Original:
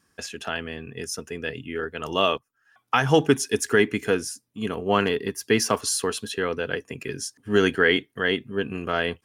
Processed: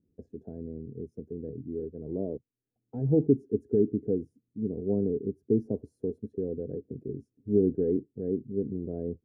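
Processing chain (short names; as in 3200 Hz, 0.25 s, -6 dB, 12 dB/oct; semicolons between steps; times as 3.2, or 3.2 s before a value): inverse Chebyshev low-pass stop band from 1100 Hz, stop band 50 dB; gain -1.5 dB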